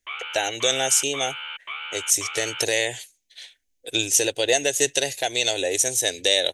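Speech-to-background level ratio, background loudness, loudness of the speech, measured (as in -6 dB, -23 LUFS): 10.5 dB, -32.5 LUFS, -22.0 LUFS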